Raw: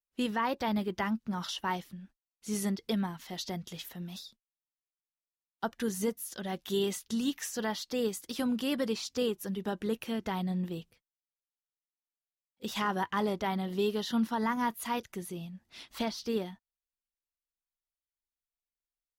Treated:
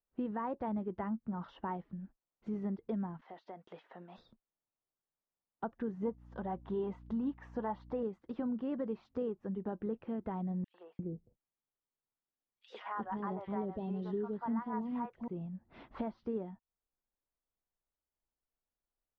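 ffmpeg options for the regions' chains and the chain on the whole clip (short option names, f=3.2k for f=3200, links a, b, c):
-filter_complex "[0:a]asettb=1/sr,asplit=3[a][b][c];[a]atrim=end=3.214[d];[b]atrim=start=3.21:end=4.18,asetpts=PTS-STARTPTS,afade=t=in:d=0.004:c=qsin,afade=t=out:st=0.966:d=0.004:c=qsin,highpass=580,acompressor=threshold=-44dB:ratio=12:attack=3.2:release=140:knee=1:detection=peak,agate=range=-33dB:threshold=-55dB:ratio=3:release=100:detection=peak[e];[c]atrim=start=4.176[f];[d][e]acrossfade=d=0.004:c1=hsin:c2=qsin[g];[g][f]acrossfade=d=0.004:c1=qsin:c2=hsin,asettb=1/sr,asplit=3[h][i][j];[h]atrim=end=6.054[k];[i]atrim=start=6.05:end=8.03,asetpts=PTS-STARTPTS,afade=t=in:d=0.004:c=qsin,afade=t=out:st=1.976:d=0.004:c=qsin,equalizer=f=940:w=2.2:g=8.5,aphaser=in_gain=1:out_gain=1:delay=4.4:decay=0.28:speed=1.7:type=sinusoidal,aeval=exprs='val(0)+0.00251*(sin(2*PI*60*n/s)+sin(2*PI*2*60*n/s)/2+sin(2*PI*3*60*n/s)/3+sin(2*PI*4*60*n/s)/4+sin(2*PI*5*60*n/s)/5)':c=same[l];[j]atrim=start=8.026[m];[k][l]acrossfade=d=0.004:c1=hsin:c2=qsin[n];[n][m]acrossfade=d=0.004:c1=qsin:c2=hsin,asettb=1/sr,asplit=3[o][p][q];[o]atrim=end=10.644[r];[p]atrim=start=10.64:end=15.28,asetpts=PTS-STARTPTS,afade=t=in:d=0.004:c=qsin,afade=t=out:st=4.636:d=0.004:c=qsin,equalizer=f=6k:w=0.47:g=4,acrossover=split=620|2500[s][t][u];[t]adelay=100[v];[s]adelay=350[w];[w][v][u]amix=inputs=3:normalize=0,atrim=end_sample=204624[x];[q]atrim=start=15.276[y];[r][x]acrossfade=d=0.004:c1=hsin:c2=qsin[z];[z][y]acrossfade=d=0.004:c1=qsin:c2=hsin,lowpass=1.1k,aemphasis=mode=reproduction:type=75fm,acompressor=threshold=-51dB:ratio=2,volume=6.5dB"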